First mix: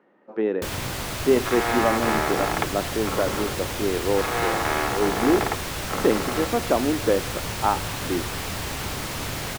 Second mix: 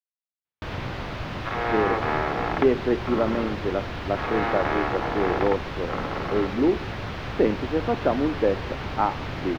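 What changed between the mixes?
speech: entry +1.35 s; master: add air absorption 280 m

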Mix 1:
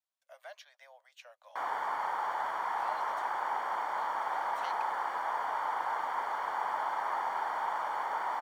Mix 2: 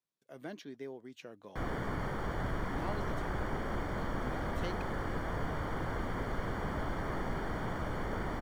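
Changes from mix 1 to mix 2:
speech: remove steep high-pass 560 Hz 96 dB/oct; background: remove resonant high-pass 890 Hz, resonance Q 4.9

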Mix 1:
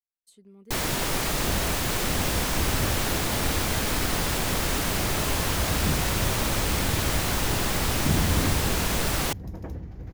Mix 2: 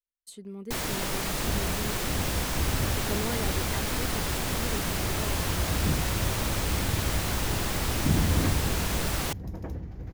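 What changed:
speech +11.0 dB; first sound -4.0 dB

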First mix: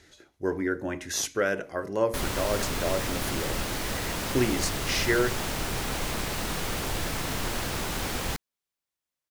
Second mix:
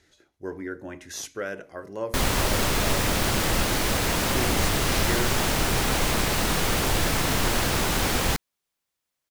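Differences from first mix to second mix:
speech -6.0 dB; background +7.0 dB

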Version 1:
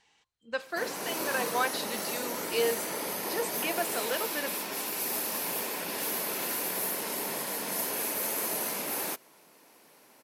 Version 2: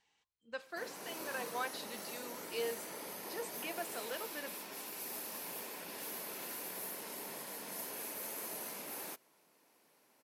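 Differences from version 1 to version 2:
speech -10.0 dB; background -11.5 dB

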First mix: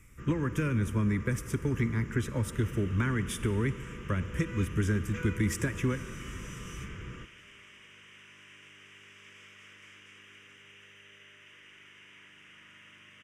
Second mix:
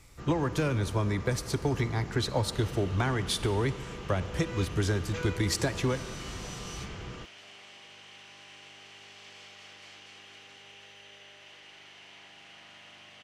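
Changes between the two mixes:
speech: add bell 220 Hz -12.5 dB 0.21 oct; second sound: send off; master: remove fixed phaser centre 1800 Hz, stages 4

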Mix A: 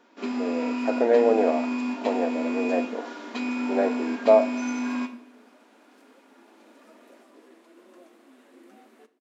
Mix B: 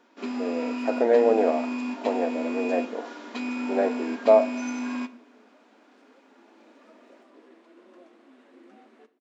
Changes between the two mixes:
first sound: send -8.0 dB; second sound: add air absorption 100 m

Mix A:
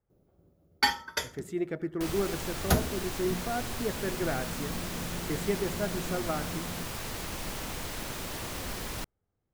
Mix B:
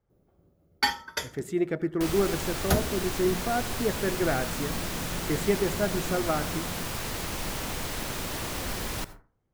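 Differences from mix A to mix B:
speech +5.0 dB; second sound: send on

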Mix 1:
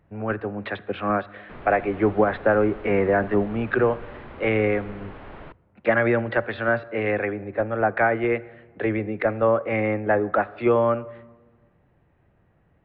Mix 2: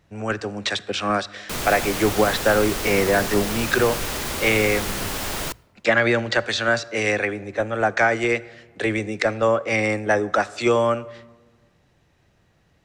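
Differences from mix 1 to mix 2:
background +10.0 dB; master: remove Gaussian blur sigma 4 samples

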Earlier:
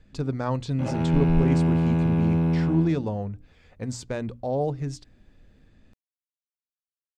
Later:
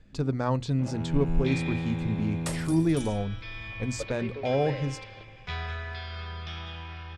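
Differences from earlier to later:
first sound -10.0 dB; second sound: unmuted

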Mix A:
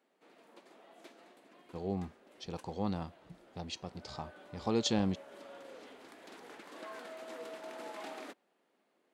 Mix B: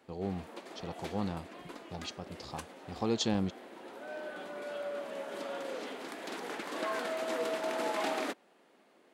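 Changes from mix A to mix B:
speech: entry -1.65 s; background +11.5 dB

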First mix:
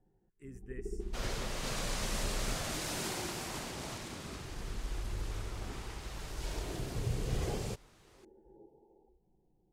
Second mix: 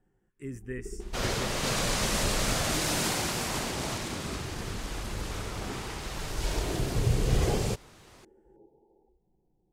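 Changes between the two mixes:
speech +11.0 dB; second sound +9.0 dB

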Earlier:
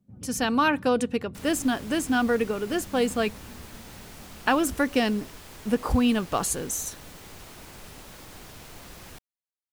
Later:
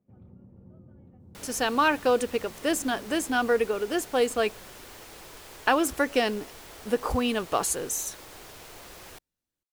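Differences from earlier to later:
speech: entry +1.20 s; master: add resonant low shelf 300 Hz -6 dB, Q 1.5

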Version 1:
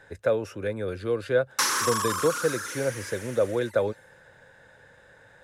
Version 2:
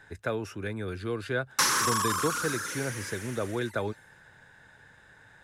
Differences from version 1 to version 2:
speech: add bell 530 Hz -14 dB 0.4 oct; background: remove HPF 250 Hz

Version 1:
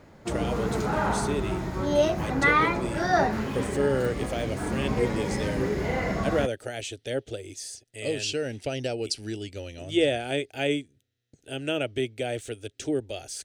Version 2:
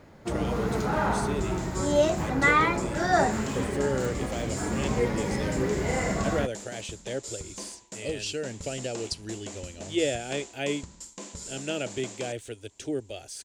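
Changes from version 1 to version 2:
speech -3.5 dB; second sound: unmuted

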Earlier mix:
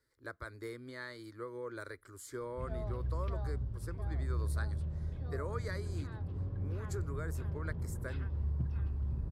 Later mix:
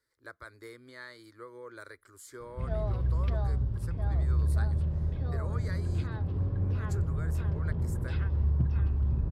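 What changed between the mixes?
speech: add low shelf 430 Hz -7.5 dB; background +8.0 dB

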